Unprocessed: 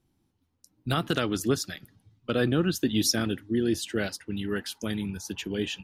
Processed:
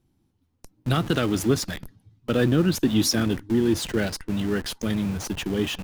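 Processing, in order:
low-shelf EQ 430 Hz +5 dB
in parallel at −10 dB: comparator with hysteresis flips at −39 dBFS

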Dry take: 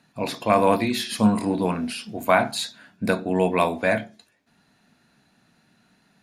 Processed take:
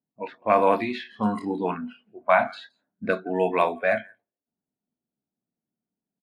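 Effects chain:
low-pass that shuts in the quiet parts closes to 370 Hz, open at −16 dBFS
bass and treble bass −11 dB, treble −15 dB
single-tap delay 170 ms −21 dB
noise reduction from a noise print of the clip's start 18 dB

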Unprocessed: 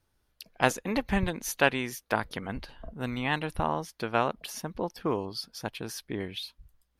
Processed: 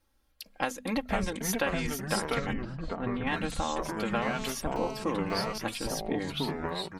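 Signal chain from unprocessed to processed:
mains-hum notches 50/100/150/200/250 Hz
comb filter 3.7 ms, depth 70%
downward compressor 6 to 1, threshold −27 dBFS, peak gain reduction 11.5 dB
delay with pitch and tempo change per echo 391 ms, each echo −3 semitones, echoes 3
0:02.53–0:03.27: head-to-tape spacing loss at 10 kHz 37 dB
0:04.22–0:05.58: phone interference −41 dBFS

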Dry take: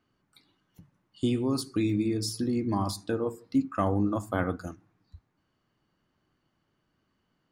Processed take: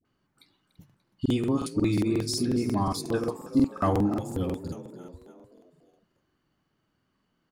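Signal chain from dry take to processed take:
healed spectral selection 0:04.04–0:04.88, 540–2,300 Hz
in parallel at −11 dB: dead-zone distortion −48 dBFS
on the sum: all-pass dispersion highs, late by 52 ms, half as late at 650 Hz
echo with shifted repeats 292 ms, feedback 52%, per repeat +41 Hz, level −14 dB
regular buffer underruns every 0.18 s, samples 2,048, repeat, from 0:00.67

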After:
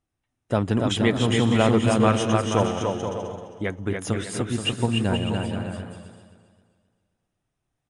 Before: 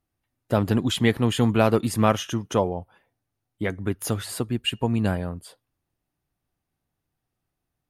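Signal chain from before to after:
elliptic low-pass filter 9,600 Hz, stop band 40 dB
notch filter 4,500 Hz, Q 5.7
on a send: bouncing-ball delay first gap 290 ms, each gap 0.65×, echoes 5
on the sum: feedback echo with a swinging delay time 263 ms, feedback 38%, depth 50 cents, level −11.5 dB

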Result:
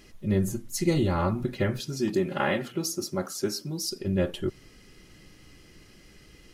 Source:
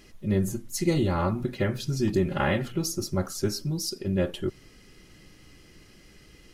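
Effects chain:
0:01.80–0:03.91: high-pass filter 200 Hz 12 dB per octave

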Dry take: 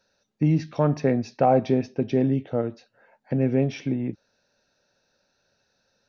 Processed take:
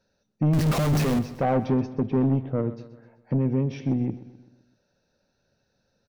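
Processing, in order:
0:00.53–0:01.19: sign of each sample alone
0:01.93–0:02.67: low-pass that shuts in the quiet parts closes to 350 Hz, open at −18 dBFS
low-shelf EQ 460 Hz +12 dB
0:03.37–0:03.81: downward compressor 4 to 1, threshold −13 dBFS, peak gain reduction 5 dB
soft clipping −10.5 dBFS, distortion −13 dB
repeating echo 128 ms, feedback 50%, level −15.5 dB
level −6 dB

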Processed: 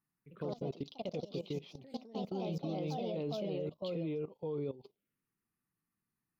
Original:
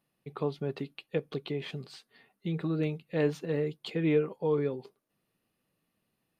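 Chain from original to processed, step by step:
delay with pitch and tempo change per echo 91 ms, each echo +3 semitones, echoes 3
output level in coarse steps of 17 dB
phaser swept by the level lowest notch 570 Hz, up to 1,700 Hz, full sweep at −39.5 dBFS
level −2 dB

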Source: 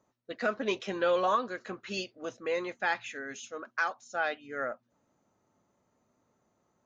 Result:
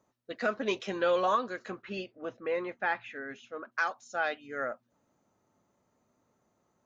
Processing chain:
0:01.82–0:03.72: low-pass filter 2,400 Hz 12 dB per octave

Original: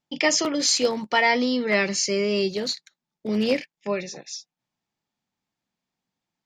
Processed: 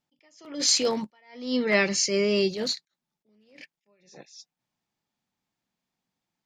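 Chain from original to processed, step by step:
level that may rise only so fast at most 110 dB per second

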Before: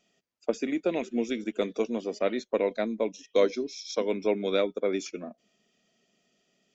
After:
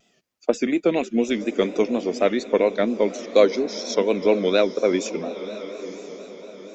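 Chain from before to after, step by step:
feedback delay with all-pass diffusion 965 ms, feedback 42%, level −13 dB
pitch vibrato 4.2 Hz 96 cents
level +7.5 dB

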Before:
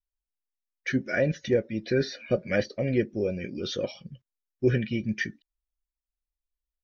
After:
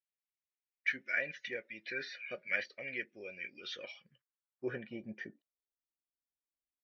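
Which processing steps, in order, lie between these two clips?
band-pass filter sweep 2,200 Hz → 290 Hz, 0:03.85–0:06.05
level +1 dB

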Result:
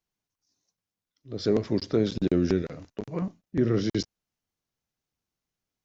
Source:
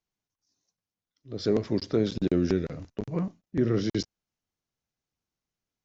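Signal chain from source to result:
0:02.62–0:03.22: low-shelf EQ 190 Hz −8 dB
level +1 dB

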